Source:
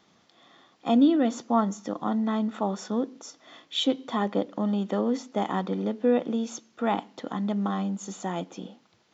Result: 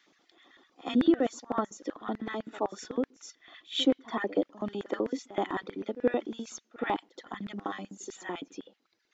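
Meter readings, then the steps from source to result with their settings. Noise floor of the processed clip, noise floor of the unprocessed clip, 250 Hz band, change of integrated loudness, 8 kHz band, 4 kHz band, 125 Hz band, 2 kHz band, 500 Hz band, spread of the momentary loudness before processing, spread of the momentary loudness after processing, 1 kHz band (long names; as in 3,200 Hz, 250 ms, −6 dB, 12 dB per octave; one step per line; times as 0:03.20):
−75 dBFS, −64 dBFS, −6.0 dB, −5.0 dB, can't be measured, −2.5 dB, −12.5 dB, +1.0 dB, −3.5 dB, 11 LU, 15 LU, −5.5 dB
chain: reverb reduction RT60 1.2 s
auto-filter high-pass square 7.9 Hz 320–1,800 Hz
echo ahead of the sound 75 ms −18 dB
level −3.5 dB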